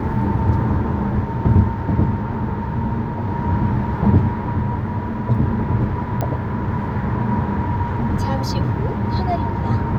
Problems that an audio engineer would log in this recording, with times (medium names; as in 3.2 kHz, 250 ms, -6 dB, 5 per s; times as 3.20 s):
6.21 s: pop -10 dBFS